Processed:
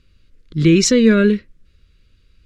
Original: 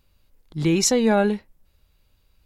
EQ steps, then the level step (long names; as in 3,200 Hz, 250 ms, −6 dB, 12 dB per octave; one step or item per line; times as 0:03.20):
Butterworth band-reject 790 Hz, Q 0.96
high-frequency loss of the air 85 metres
+8.5 dB